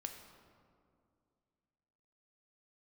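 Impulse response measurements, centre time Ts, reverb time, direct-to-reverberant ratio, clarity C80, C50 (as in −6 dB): 36 ms, 2.3 s, 4.0 dB, 8.0 dB, 6.5 dB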